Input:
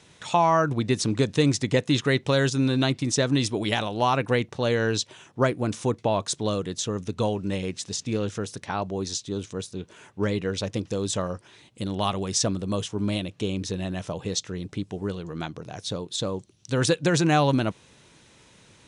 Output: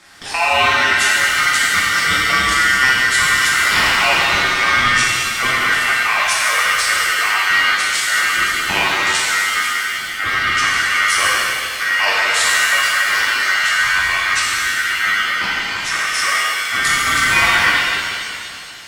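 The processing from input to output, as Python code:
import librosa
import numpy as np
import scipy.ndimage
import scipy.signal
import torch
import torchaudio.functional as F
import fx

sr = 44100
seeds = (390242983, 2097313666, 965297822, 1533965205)

p1 = fx.delta_hold(x, sr, step_db=-46.0, at=(12.52, 13.13))
p2 = fx.over_compress(p1, sr, threshold_db=-27.0, ratio=-1.0)
p3 = p1 + (p2 * librosa.db_to_amplitude(3.0))
p4 = p3 * np.sin(2.0 * np.pi * 1700.0 * np.arange(len(p3)) / sr)
p5 = fx.rev_shimmer(p4, sr, seeds[0], rt60_s=2.4, semitones=7, shimmer_db=-8, drr_db=-6.5)
y = p5 * librosa.db_to_amplitude(-1.0)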